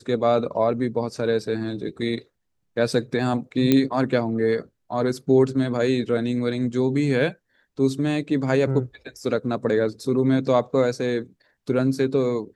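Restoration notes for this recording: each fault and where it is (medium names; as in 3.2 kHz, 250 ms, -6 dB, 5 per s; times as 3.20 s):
3.72 s: pop -6 dBFS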